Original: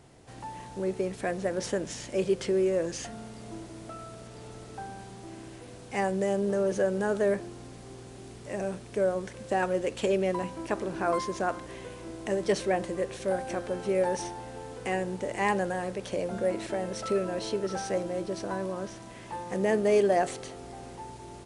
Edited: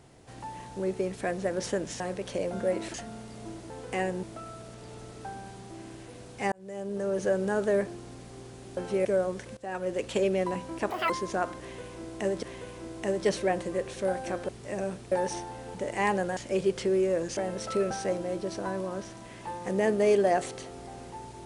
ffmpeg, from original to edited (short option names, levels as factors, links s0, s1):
-filter_complex "[0:a]asplit=18[s0][s1][s2][s3][s4][s5][s6][s7][s8][s9][s10][s11][s12][s13][s14][s15][s16][s17];[s0]atrim=end=2.002[s18];[s1]atrim=start=15.778:end=16.722[s19];[s2]atrim=start=2.998:end=3.762[s20];[s3]atrim=start=14.628:end=15.162[s21];[s4]atrim=start=3.758:end=6.05,asetpts=PTS-STARTPTS,afade=t=out:st=2.288:d=0.004:c=hsin[s22];[s5]atrim=start=6.05:end=8.302,asetpts=PTS-STARTPTS,afade=t=in:d=0.79[s23];[s6]atrim=start=13.718:end=14.002[s24];[s7]atrim=start=8.928:end=9.45,asetpts=PTS-STARTPTS,afade=t=out:st=0.518:d=0.004:c=hsin:silence=0.11885[s25];[s8]atrim=start=9.45:end=10.784,asetpts=PTS-STARTPTS,afade=t=in:d=0.46:silence=0.11885[s26];[s9]atrim=start=10.78:end=11.16,asetpts=PTS-STARTPTS,asetrate=85113,aresample=44100[s27];[s10]atrim=start=11.156:end=12.492[s28];[s11]atrim=start=11.658:end=13.722[s29];[s12]atrim=start=8.298:end=8.932[s30];[s13]atrim=start=13.998:end=14.632[s31];[s14]atrim=start=15.158:end=15.782[s32];[s15]atrim=start=1.998:end=3.002[s33];[s16]atrim=start=16.718:end=17.262[s34];[s17]atrim=start=17.758[s35];[s18][s19]acrossfade=d=0.004:c1=hsin:c2=hsin[s36];[s36][s20]acrossfade=d=0.004:c1=hsin:c2=hsin[s37];[s37][s21]acrossfade=d=0.004:c1=hsin:c2=hsin[s38];[s22][s23]concat=n=2:v=0:a=1[s39];[s38][s39]acrossfade=d=0.004:c1=hsin:c2=hsin[s40];[s40][s24]acrossfade=d=0.004:c1=hsin:c2=hsin[s41];[s25][s26]concat=n=2:v=0:a=1[s42];[s41][s42]acrossfade=d=0.004:c1=hsin:c2=hsin[s43];[s43][s27]acrossfade=d=0.004:c1=hsin:c2=hsin[s44];[s44][s28]acrossfade=d=0.004:c1=hsin:c2=hsin[s45];[s45][s29]acrossfade=d=0.004:c1=hsin:c2=hsin[s46];[s46][s30]acrossfade=d=0.004:c1=hsin:c2=hsin[s47];[s47][s31]acrossfade=d=0.004:c1=hsin:c2=hsin[s48];[s48][s32]acrossfade=d=0.004:c1=hsin:c2=hsin[s49];[s49][s33]acrossfade=d=0.004:c1=hsin:c2=hsin[s50];[s50][s34]acrossfade=d=0.004:c1=hsin:c2=hsin[s51];[s51][s35]acrossfade=d=0.004:c1=hsin:c2=hsin"